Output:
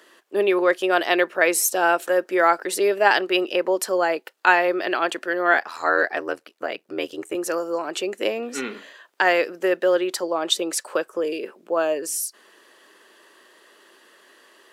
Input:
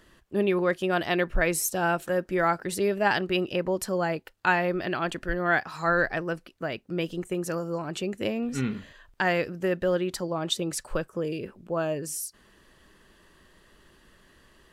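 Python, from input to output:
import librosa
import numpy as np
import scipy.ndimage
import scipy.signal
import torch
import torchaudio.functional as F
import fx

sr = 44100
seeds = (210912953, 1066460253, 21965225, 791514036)

y = scipy.signal.sosfilt(scipy.signal.butter(4, 340.0, 'highpass', fs=sr, output='sos'), x)
y = fx.ring_mod(y, sr, carrier_hz=41.0, at=(5.53, 7.35))
y = y * librosa.db_to_amplitude(7.0)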